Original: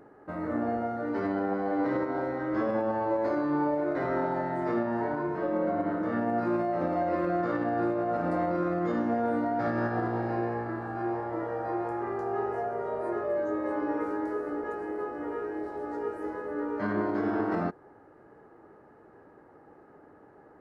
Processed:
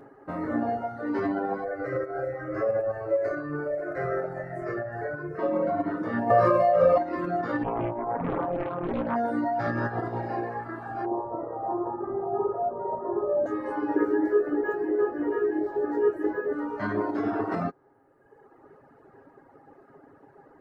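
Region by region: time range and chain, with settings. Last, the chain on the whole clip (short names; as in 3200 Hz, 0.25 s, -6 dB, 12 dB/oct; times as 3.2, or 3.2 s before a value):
1.64–5.39 low shelf 390 Hz +3.5 dB + fixed phaser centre 930 Hz, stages 6
6.3–6.98 comb 1.8 ms, depth 83% + small resonant body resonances 550/1200 Hz, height 10 dB, ringing for 40 ms + fast leveller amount 70%
7.63–9.16 LPF 1000 Hz + Doppler distortion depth 0.88 ms
11.05–13.46 LPF 1100 Hz 24 dB/oct + feedback echo 63 ms, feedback 60%, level -4.5 dB
13.96–16.53 high shelf 3700 Hz -5 dB + small resonant body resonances 360/1700 Hz, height 13 dB, ringing for 40 ms + decimation joined by straight lines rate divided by 2×
whole clip: reverb removal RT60 1.5 s; comb 7.4 ms, depth 43%; gain +3.5 dB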